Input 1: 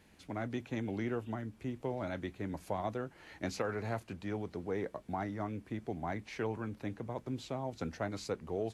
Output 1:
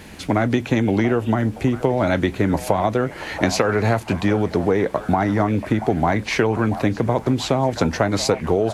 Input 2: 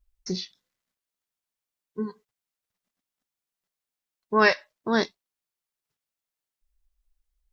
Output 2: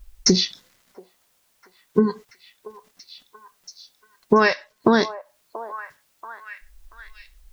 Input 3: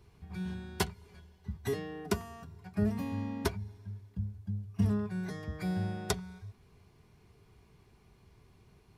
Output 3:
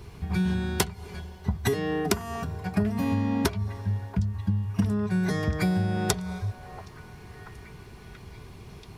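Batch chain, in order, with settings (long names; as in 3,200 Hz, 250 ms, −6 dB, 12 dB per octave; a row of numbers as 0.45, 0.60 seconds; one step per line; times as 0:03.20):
downward compressor 20 to 1, threshold −37 dBFS
echo through a band-pass that steps 683 ms, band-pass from 740 Hz, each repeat 0.7 octaves, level −10.5 dB
normalise the peak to −3 dBFS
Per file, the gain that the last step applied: +23.5, +23.5, +16.0 decibels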